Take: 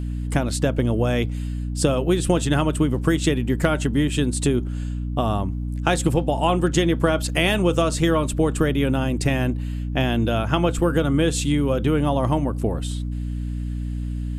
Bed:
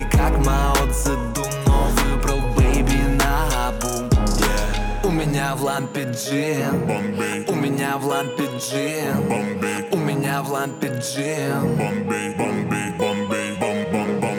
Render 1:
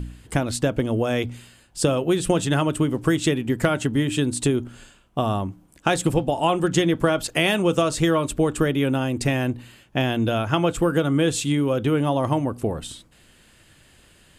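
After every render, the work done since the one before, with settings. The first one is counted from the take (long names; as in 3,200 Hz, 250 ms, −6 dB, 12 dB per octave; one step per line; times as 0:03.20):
hum removal 60 Hz, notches 5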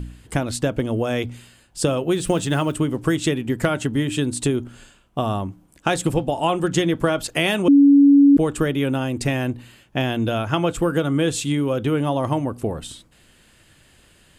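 0:02.16–0:02.76: one scale factor per block 7 bits
0:07.68–0:08.37: beep over 282 Hz −8 dBFS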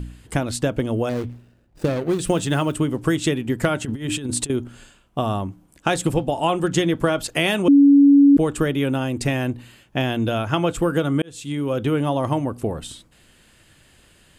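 0:01.09–0:02.19: running median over 41 samples
0:03.85–0:04.50: compressor whose output falls as the input rises −25 dBFS, ratio −0.5
0:11.22–0:11.78: fade in linear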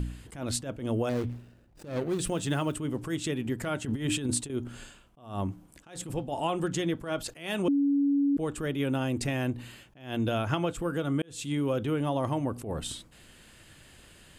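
downward compressor, threshold −25 dBFS, peak gain reduction 13.5 dB
level that may rise only so fast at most 130 dB per second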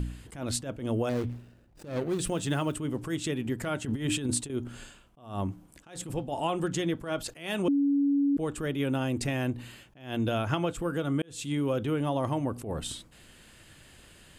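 no processing that can be heard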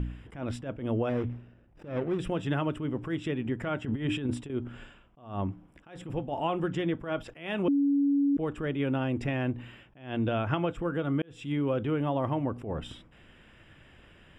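Savitzky-Golay smoothing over 25 samples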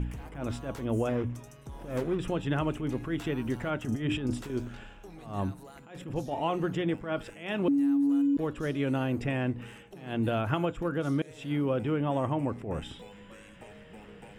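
mix in bed −28 dB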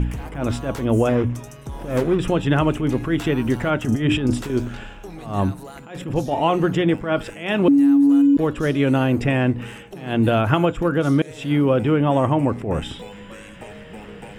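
level +11 dB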